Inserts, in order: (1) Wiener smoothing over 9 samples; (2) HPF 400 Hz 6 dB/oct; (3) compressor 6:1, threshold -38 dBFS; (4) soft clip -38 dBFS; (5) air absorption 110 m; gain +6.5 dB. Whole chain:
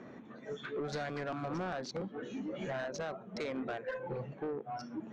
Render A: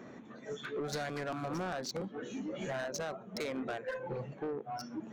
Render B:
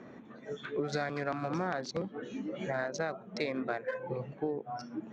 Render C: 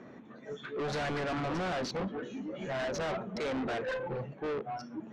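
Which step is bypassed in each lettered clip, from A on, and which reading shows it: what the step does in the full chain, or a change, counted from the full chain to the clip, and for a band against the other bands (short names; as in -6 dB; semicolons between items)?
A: 5, 4 kHz band +3.5 dB; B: 4, distortion -10 dB; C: 3, mean gain reduction 9.0 dB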